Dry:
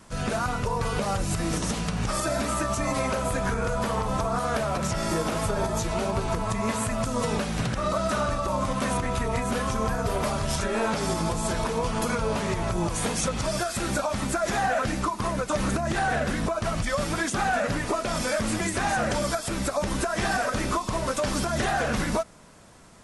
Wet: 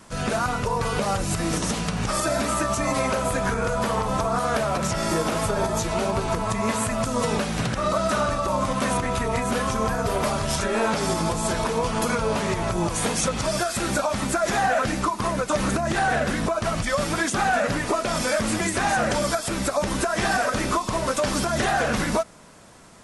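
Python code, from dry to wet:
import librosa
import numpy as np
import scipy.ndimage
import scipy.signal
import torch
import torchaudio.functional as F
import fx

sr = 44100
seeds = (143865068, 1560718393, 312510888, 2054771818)

y = fx.low_shelf(x, sr, hz=110.0, db=-5.5)
y = F.gain(torch.from_numpy(y), 3.5).numpy()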